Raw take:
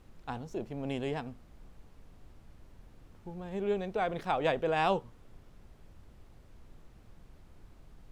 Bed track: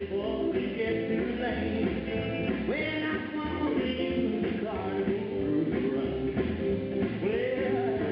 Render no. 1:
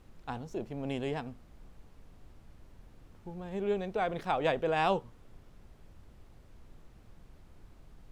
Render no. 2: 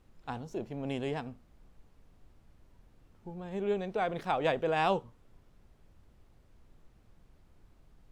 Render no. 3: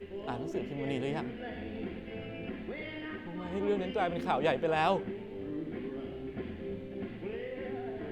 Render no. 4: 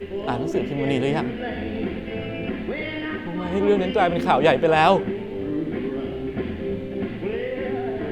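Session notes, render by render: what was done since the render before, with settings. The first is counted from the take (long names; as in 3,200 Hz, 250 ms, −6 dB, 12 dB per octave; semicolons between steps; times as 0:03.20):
no processing that can be heard
noise reduction from a noise print 6 dB
mix in bed track −10.5 dB
level +12 dB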